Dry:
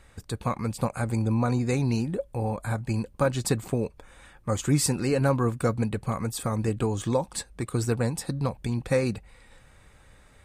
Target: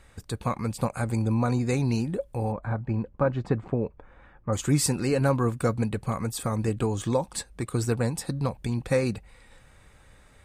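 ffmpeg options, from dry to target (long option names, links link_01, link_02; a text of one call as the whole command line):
ffmpeg -i in.wav -filter_complex "[0:a]asplit=3[link_01][link_02][link_03];[link_01]afade=type=out:start_time=2.51:duration=0.02[link_04];[link_02]lowpass=1600,afade=type=in:start_time=2.51:duration=0.02,afade=type=out:start_time=4.52:duration=0.02[link_05];[link_03]afade=type=in:start_time=4.52:duration=0.02[link_06];[link_04][link_05][link_06]amix=inputs=3:normalize=0" out.wav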